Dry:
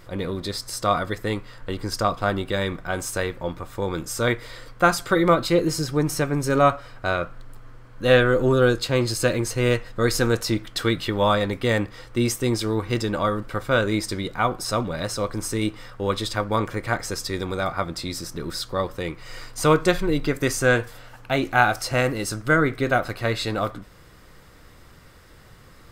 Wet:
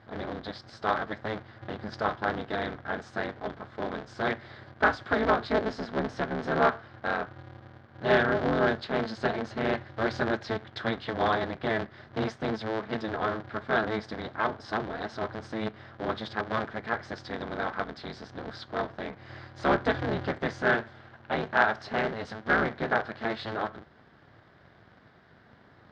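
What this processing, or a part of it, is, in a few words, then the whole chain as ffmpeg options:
ring modulator pedal into a guitar cabinet: -af "aeval=exprs='val(0)*sgn(sin(2*PI*110*n/s))':channel_layout=same,highpass=80,equalizer=frequency=720:width_type=q:width=4:gain=5,equalizer=frequency=1600:width_type=q:width=4:gain=6,equalizer=frequency=2600:width_type=q:width=4:gain=-7,lowpass=frequency=4000:width=0.5412,lowpass=frequency=4000:width=1.3066,volume=-8dB"

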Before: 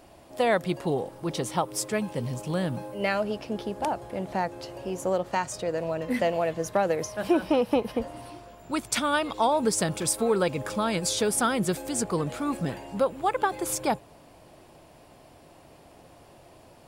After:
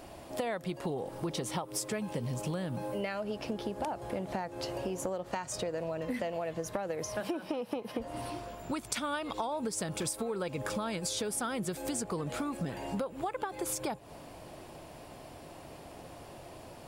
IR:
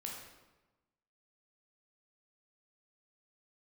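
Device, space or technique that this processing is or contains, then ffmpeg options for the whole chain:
serial compression, leveller first: -filter_complex "[0:a]asettb=1/sr,asplit=3[link_01][link_02][link_03];[link_01]atrim=end=7.204[link_04];[link_02]atrim=start=7.2:end=7.98,asetpts=PTS-STARTPTS,afade=type=in:duration=0.004:curve=qsin,afade=type=out:start_time=0.776:duration=0.004:curve=qsin,highpass=150[link_05];[link_03]atrim=start=7.976[link_06];[link_04][link_05]acrossfade=duration=0.004:curve1=hsin:curve2=qsin[link_07];[link_07][link_06]acrossfade=duration=0.004:curve1=qsin:curve2=hsin,acompressor=threshold=-30dB:ratio=2,acompressor=threshold=-36dB:ratio=6,volume=4dB"

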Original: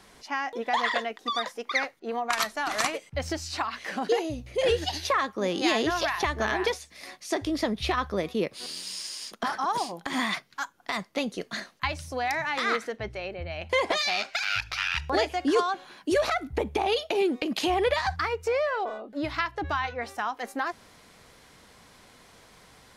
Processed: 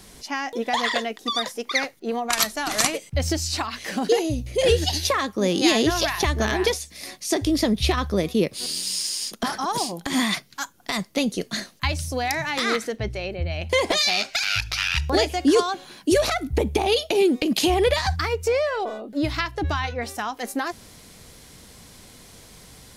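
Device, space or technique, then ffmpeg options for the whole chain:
smiley-face EQ: -af "lowshelf=frequency=170:gain=4.5,equalizer=frequency=1200:width_type=o:width=2.4:gain=-8,highshelf=frequency=6700:gain=7,volume=8dB"

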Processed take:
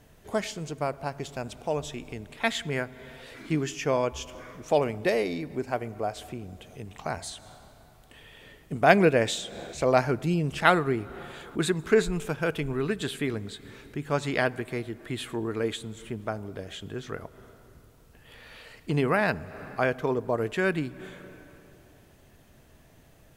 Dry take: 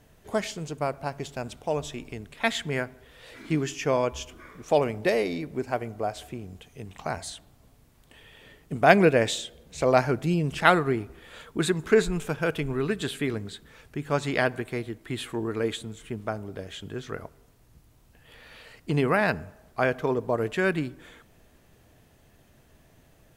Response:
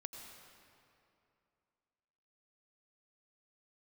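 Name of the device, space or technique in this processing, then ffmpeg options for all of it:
ducked reverb: -filter_complex "[0:a]asplit=3[link_01][link_02][link_03];[1:a]atrim=start_sample=2205[link_04];[link_02][link_04]afir=irnorm=-1:irlink=0[link_05];[link_03]apad=whole_len=1030476[link_06];[link_05][link_06]sidechaincompress=threshold=-48dB:ratio=3:attack=7.1:release=142,volume=-3dB[link_07];[link_01][link_07]amix=inputs=2:normalize=0,volume=-1.5dB"

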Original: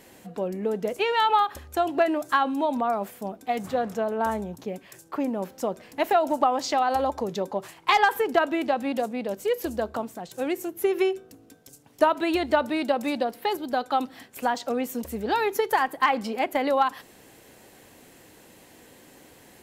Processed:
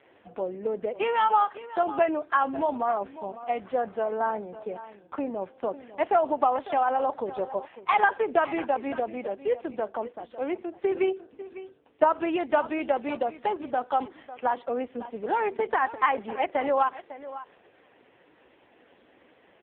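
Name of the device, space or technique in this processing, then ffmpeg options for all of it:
satellite phone: -filter_complex "[0:a]asettb=1/sr,asplit=3[link_01][link_02][link_03];[link_01]atrim=end=6.724[link_04];[link_02]atrim=start=6.72:end=7.55,asetpts=PTS-STARTPTS,afade=type=in:duration=0.004:curve=qsin,afade=type=out:start_time=0.826:duration=0.004:curve=qsin,highshelf=frequency=8200:gain=-4.5[link_05];[link_03]atrim=start=7.546[link_06];[link_04][link_05]acrossfade=duration=0.004:curve1=hsin:curve2=qsin[link_07];[link_07][link_06]acrossfade=duration=0.004:curve1=qsin:curve2=hsin,highpass=320,lowpass=3300,aecho=1:1:550:0.178" -ar 8000 -c:a libopencore_amrnb -b:a 5150

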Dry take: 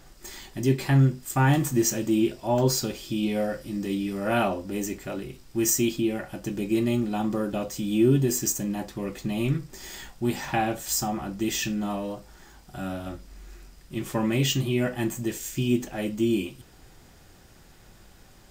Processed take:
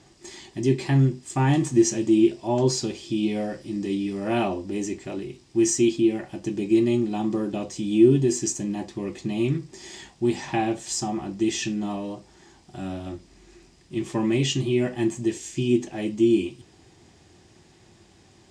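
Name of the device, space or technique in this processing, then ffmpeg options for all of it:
car door speaker: -af "highpass=92,equalizer=frequency=92:width_type=q:width=4:gain=5,equalizer=frequency=350:width_type=q:width=4:gain=7,equalizer=frequency=530:width_type=q:width=4:gain=-5,equalizer=frequency=1400:width_type=q:width=4:gain=-9,lowpass=frequency=8300:width=0.5412,lowpass=frequency=8300:width=1.3066"

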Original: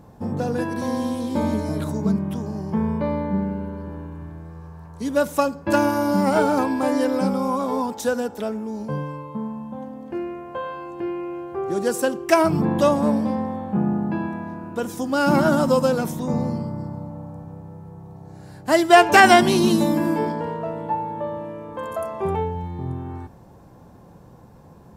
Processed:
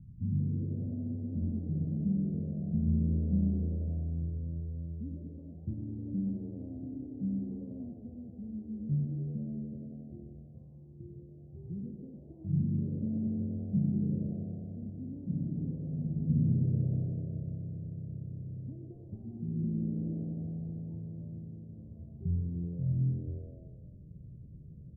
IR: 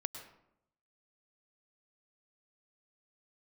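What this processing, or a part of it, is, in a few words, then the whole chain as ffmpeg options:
club heard from the street: -filter_complex "[0:a]alimiter=limit=-13.5dB:level=0:latency=1:release=354,lowpass=frequency=160:width=0.5412,lowpass=frequency=160:width=1.3066[link_01];[1:a]atrim=start_sample=2205[link_02];[link_01][link_02]afir=irnorm=-1:irlink=0,asettb=1/sr,asplit=3[link_03][link_04][link_05];[link_03]atrim=end=15.864[link_06];[link_04]atrim=start=15.86:end=16.52,asetpts=PTS-STARTPTS,afade=type=in:duration=0.004:curve=qsin,afade=type=out:start_time=0.656:duration=0.004:curve=qsin,asplit=2[link_07][link_08];[link_08]adelay=13,volume=-6.5dB[link_09];[link_07][link_09]amix=inputs=2:normalize=0,atrim=end_sample=29106[link_10];[link_05]atrim=start=16.516[link_11];[link_06][link_10]acrossfade=duration=0.004:curve1=hsin:curve2=qsin[link_12];[link_12][link_11]acrossfade=duration=0.004:curve1=qsin:curve2=hsin,asplit=7[link_13][link_14][link_15][link_16][link_17][link_18][link_19];[link_14]adelay=94,afreqshift=85,volume=-17.5dB[link_20];[link_15]adelay=188,afreqshift=170,volume=-21.8dB[link_21];[link_16]adelay=282,afreqshift=255,volume=-26.1dB[link_22];[link_17]adelay=376,afreqshift=340,volume=-30.4dB[link_23];[link_18]adelay=470,afreqshift=425,volume=-34.7dB[link_24];[link_19]adelay=564,afreqshift=510,volume=-39dB[link_25];[link_13][link_20][link_21][link_22][link_23][link_24][link_25]amix=inputs=7:normalize=0,volume=2dB"

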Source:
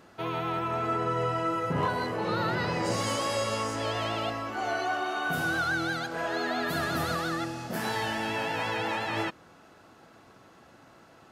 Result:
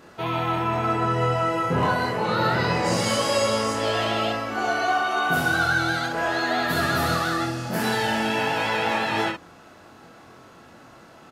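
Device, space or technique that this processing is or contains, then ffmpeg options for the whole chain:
slapback doubling: -filter_complex "[0:a]asplit=3[link_01][link_02][link_03];[link_02]adelay=23,volume=-3dB[link_04];[link_03]adelay=63,volume=-5.5dB[link_05];[link_01][link_04][link_05]amix=inputs=3:normalize=0,volume=4.5dB"

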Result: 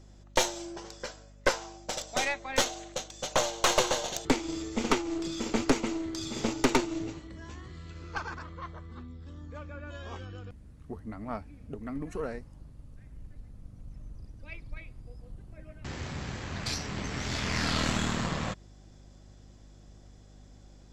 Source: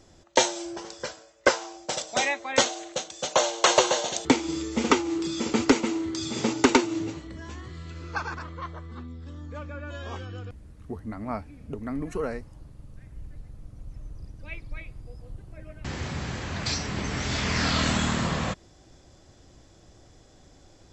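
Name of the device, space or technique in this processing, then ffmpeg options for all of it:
valve amplifier with mains hum: -af "aeval=exprs='(tanh(6.31*val(0)+0.8)-tanh(0.8))/6.31':channel_layout=same,aeval=exprs='val(0)+0.00251*(sin(2*PI*50*n/s)+sin(2*PI*2*50*n/s)/2+sin(2*PI*3*50*n/s)/3+sin(2*PI*4*50*n/s)/4+sin(2*PI*5*50*n/s)/5)':channel_layout=same"

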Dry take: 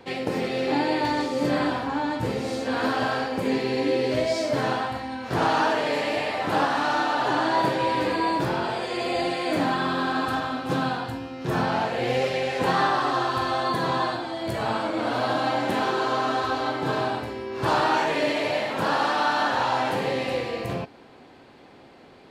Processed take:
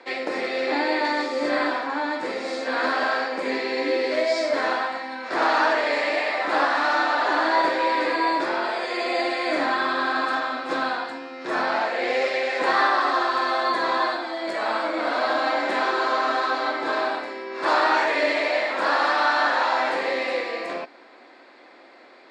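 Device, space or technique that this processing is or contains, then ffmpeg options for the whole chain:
phone speaker on a table: -af "highpass=frequency=340:width=0.5412,highpass=frequency=340:width=1.3066,equalizer=frequency=430:width_type=q:width=4:gain=-9,equalizer=frequency=830:width_type=q:width=4:gain=-5,equalizer=frequency=2000:width_type=q:width=4:gain=4,equalizer=frequency=3000:width_type=q:width=4:gain=-8,equalizer=frequency=6100:width_type=q:width=4:gain=-7,lowpass=frequency=7100:width=0.5412,lowpass=frequency=7100:width=1.3066,volume=4.5dB"

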